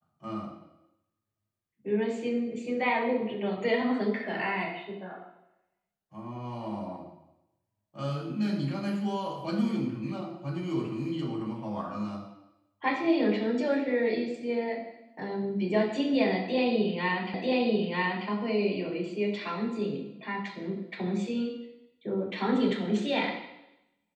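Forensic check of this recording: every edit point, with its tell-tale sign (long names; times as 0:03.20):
0:17.34: the same again, the last 0.94 s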